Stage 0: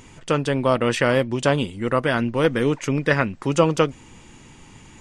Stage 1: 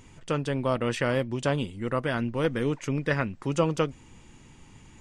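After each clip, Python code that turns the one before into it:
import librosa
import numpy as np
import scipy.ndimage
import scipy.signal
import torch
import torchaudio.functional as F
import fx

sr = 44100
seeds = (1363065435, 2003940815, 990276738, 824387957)

y = fx.low_shelf(x, sr, hz=160.0, db=5.5)
y = y * librosa.db_to_amplitude(-8.0)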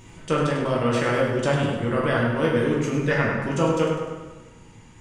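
y = fx.rider(x, sr, range_db=10, speed_s=0.5)
y = fx.echo_feedback(y, sr, ms=100, feedback_pct=51, wet_db=-8.5)
y = fx.rev_plate(y, sr, seeds[0], rt60_s=1.1, hf_ratio=0.55, predelay_ms=0, drr_db=-3.5)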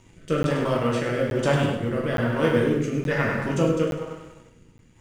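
y = fx.law_mismatch(x, sr, coded='A')
y = fx.rotary(y, sr, hz=1.1)
y = fx.buffer_crackle(y, sr, first_s=0.43, period_s=0.87, block=512, kind='zero')
y = y * librosa.db_to_amplitude(1.5)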